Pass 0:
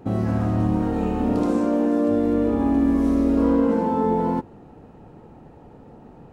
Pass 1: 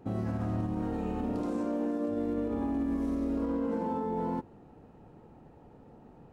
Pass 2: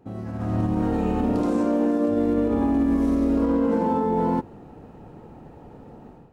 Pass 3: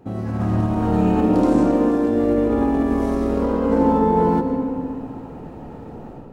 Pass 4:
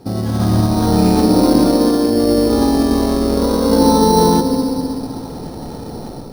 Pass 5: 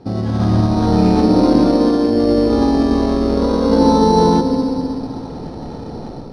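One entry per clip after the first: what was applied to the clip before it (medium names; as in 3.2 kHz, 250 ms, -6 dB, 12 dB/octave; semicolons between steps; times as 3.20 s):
peak limiter -15.5 dBFS, peak gain reduction 7.5 dB; trim -8.5 dB
level rider gain up to 12 dB; trim -2 dB
in parallel at +1 dB: peak limiter -21.5 dBFS, peak gain reduction 7.5 dB; on the sum: algorithmic reverb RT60 3 s, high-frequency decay 0.35×, pre-delay 75 ms, DRR 5 dB
in parallel at +2.5 dB: gain riding within 4 dB 2 s; on the sum: sample-and-hold 9×; trim -2.5 dB
distance through air 120 m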